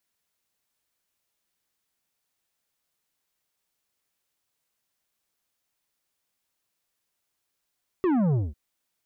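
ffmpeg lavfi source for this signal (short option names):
-f lavfi -i "aevalsrc='0.0891*clip((0.5-t)/0.2,0,1)*tanh(2.99*sin(2*PI*390*0.5/log(65/390)*(exp(log(65/390)*t/0.5)-1)))/tanh(2.99)':d=0.5:s=44100"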